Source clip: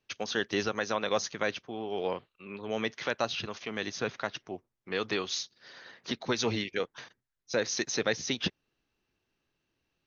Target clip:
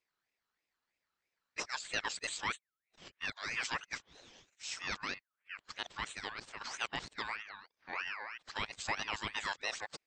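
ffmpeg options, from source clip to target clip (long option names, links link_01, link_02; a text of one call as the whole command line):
ffmpeg -i in.wav -af "areverse,aeval=exprs='val(0)*sin(2*PI*1800*n/s+1800*0.3/3.1*sin(2*PI*3.1*n/s))':channel_layout=same,volume=-5dB" out.wav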